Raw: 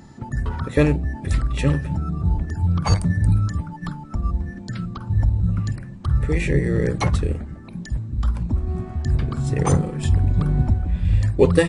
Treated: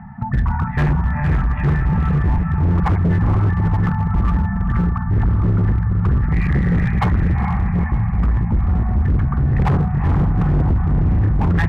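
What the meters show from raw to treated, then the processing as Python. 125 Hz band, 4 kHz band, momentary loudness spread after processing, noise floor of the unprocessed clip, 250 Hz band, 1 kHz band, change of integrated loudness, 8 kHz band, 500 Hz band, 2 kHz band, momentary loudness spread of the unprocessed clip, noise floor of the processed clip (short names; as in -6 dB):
+4.5 dB, n/a, 2 LU, -38 dBFS, +4.5 dB, +7.0 dB, +4.0 dB, under -15 dB, -6.5 dB, +3.5 dB, 11 LU, -23 dBFS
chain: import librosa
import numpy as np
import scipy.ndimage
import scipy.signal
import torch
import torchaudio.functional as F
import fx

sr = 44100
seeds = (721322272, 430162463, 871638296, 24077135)

p1 = scipy.signal.sosfilt(scipy.signal.ellip(3, 1.0, 40, [210.0, 760.0], 'bandstop', fs=sr, output='sos'), x)
p2 = fx.rider(p1, sr, range_db=5, speed_s=0.5)
p3 = p1 + (p2 * 10.0 ** (0.5 / 20.0))
p4 = scipy.signal.sosfilt(scipy.signal.butter(6, 2000.0, 'lowpass', fs=sr, output='sos'), p3)
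p5 = fx.peak_eq(p4, sr, hz=410.0, db=8.0, octaves=1.8)
p6 = p5 + fx.echo_diffused(p5, sr, ms=455, feedback_pct=56, wet_db=-4.0, dry=0)
p7 = np.clip(p6, -10.0 ** (-11.5 / 20.0), 10.0 ** (-11.5 / 20.0))
y = p7 * 10.0 ** (-1.0 / 20.0)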